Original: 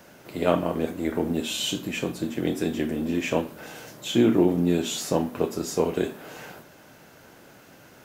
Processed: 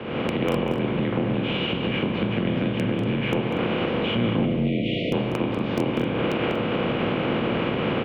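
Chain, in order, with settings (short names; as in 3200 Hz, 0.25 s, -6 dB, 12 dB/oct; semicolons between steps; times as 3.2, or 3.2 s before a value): per-bin compression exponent 0.4; recorder AGC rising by 53 dB/s; mistuned SSB -120 Hz 250–3200 Hz; in parallel at -9.5 dB: wrapped overs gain 6.5 dB; on the sum: spectral delete 4.45–5.12, 720–1900 Hz; on a send: tapped delay 0.194/0.238 s -10/-15.5 dB; on the sum: spring tank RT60 1.4 s, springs 35 ms, chirp 50 ms, DRR 19 dB; gain -8.5 dB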